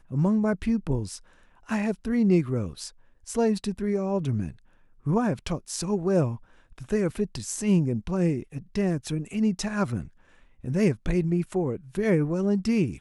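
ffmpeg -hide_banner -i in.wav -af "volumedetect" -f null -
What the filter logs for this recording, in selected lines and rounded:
mean_volume: -26.4 dB
max_volume: -10.2 dB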